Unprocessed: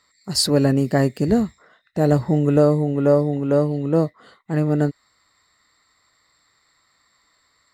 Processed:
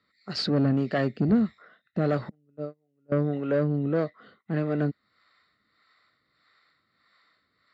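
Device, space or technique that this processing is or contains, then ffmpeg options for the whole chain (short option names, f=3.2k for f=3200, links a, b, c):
guitar amplifier with harmonic tremolo: -filter_complex "[0:a]asettb=1/sr,asplit=3[a][b][c];[a]atrim=end=2.294[d];[b]atrim=start=2.29:end=3.12,asetpts=PTS-STARTPTS,afade=t=in:d=0.004:c=qsin,afade=t=out:st=0.826:d=0.004:c=qsin,agate=range=-46dB:threshold=-10dB:ratio=16:detection=peak[e];[c]atrim=start=3.116[f];[d][e]acrossfade=d=0.004:c1=hsin:c2=qsin[g];[g][f]acrossfade=d=0.004:c1=qsin:c2=hsin,acrossover=split=420[h][i];[h]aeval=exprs='val(0)*(1-0.7/2+0.7/2*cos(2*PI*1.6*n/s))':c=same[j];[i]aeval=exprs='val(0)*(1-0.7/2-0.7/2*cos(2*PI*1.6*n/s))':c=same[k];[j][k]amix=inputs=2:normalize=0,asoftclip=type=tanh:threshold=-17.5dB,highpass=100,equalizer=f=210:t=q:w=4:g=4,equalizer=f=920:t=q:w=4:g=-10,equalizer=f=1.4k:t=q:w=4:g=5,lowpass=f=4.2k:w=0.5412,lowpass=f=4.2k:w=1.3066"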